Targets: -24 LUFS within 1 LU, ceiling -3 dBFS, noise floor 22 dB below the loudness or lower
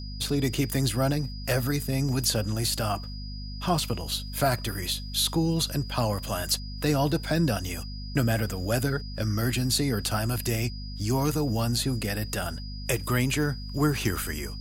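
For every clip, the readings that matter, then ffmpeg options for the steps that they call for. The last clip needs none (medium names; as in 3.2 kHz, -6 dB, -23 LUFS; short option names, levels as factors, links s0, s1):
hum 50 Hz; highest harmonic 250 Hz; hum level -34 dBFS; steady tone 4.9 kHz; tone level -43 dBFS; loudness -27.5 LUFS; peak level -11.5 dBFS; loudness target -24.0 LUFS
-> -af "bandreject=f=50:t=h:w=4,bandreject=f=100:t=h:w=4,bandreject=f=150:t=h:w=4,bandreject=f=200:t=h:w=4,bandreject=f=250:t=h:w=4"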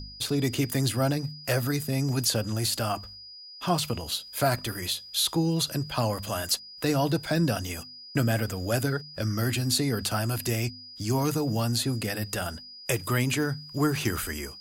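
hum not found; steady tone 4.9 kHz; tone level -43 dBFS
-> -af "bandreject=f=4900:w=30"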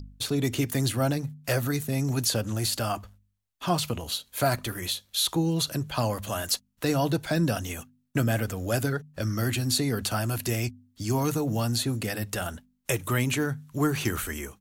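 steady tone not found; loudness -28.0 LUFS; peak level -12.0 dBFS; loudness target -24.0 LUFS
-> -af "volume=1.58"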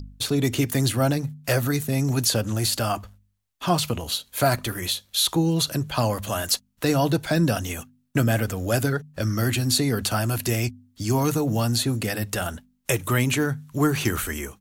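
loudness -24.0 LUFS; peak level -8.0 dBFS; noise floor -66 dBFS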